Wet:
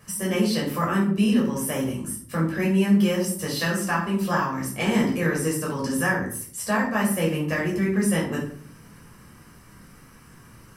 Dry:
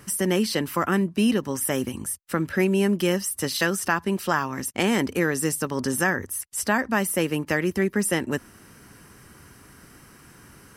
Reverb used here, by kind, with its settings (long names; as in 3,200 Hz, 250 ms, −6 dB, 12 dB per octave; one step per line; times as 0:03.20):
rectangular room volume 610 cubic metres, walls furnished, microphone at 5.7 metres
level −9 dB